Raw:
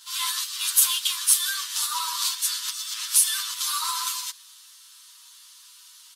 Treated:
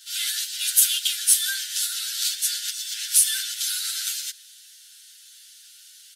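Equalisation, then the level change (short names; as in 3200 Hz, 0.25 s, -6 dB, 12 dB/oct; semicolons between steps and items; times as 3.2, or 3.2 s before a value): Chebyshev high-pass 1400 Hz, order 10; +1.5 dB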